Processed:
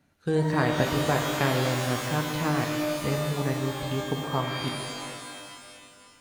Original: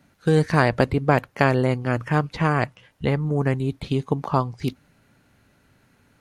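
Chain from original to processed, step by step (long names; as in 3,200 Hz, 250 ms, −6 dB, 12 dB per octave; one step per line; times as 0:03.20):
reverb with rising layers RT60 2.1 s, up +12 semitones, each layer −2 dB, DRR 3 dB
level −8.5 dB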